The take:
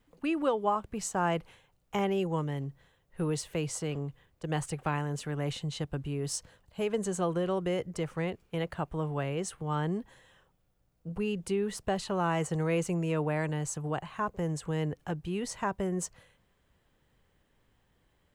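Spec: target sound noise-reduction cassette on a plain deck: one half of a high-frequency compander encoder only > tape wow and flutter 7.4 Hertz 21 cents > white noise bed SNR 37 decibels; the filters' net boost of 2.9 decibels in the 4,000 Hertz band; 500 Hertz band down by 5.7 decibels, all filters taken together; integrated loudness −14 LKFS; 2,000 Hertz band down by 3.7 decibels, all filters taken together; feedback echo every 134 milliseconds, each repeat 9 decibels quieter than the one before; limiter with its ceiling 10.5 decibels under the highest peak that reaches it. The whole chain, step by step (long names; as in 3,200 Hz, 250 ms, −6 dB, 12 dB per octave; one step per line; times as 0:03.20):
parametric band 500 Hz −7 dB
parametric band 2,000 Hz −6.5 dB
parametric band 4,000 Hz +7 dB
brickwall limiter −29 dBFS
repeating echo 134 ms, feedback 35%, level −9 dB
one half of a high-frequency compander encoder only
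tape wow and flutter 7.4 Hz 21 cents
white noise bed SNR 37 dB
level +23.5 dB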